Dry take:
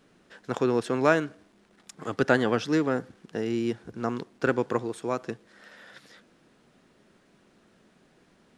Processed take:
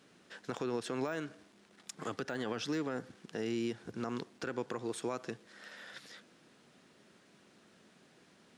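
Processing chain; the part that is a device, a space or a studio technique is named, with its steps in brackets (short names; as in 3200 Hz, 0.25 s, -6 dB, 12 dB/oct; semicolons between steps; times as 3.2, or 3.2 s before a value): broadcast voice chain (HPF 92 Hz; de-esser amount 80%; compressor 4:1, threshold -28 dBFS, peak gain reduction 11 dB; bell 5600 Hz +5.5 dB 3 oct; limiter -23.5 dBFS, peak gain reduction 10.5 dB); gain -3 dB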